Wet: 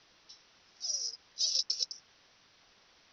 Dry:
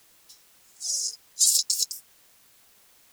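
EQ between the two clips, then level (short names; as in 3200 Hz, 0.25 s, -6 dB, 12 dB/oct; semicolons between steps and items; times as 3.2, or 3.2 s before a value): Chebyshev low-pass 5900 Hz, order 8; dynamic EQ 4000 Hz, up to -5 dB, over -38 dBFS, Q 1.1; 0.0 dB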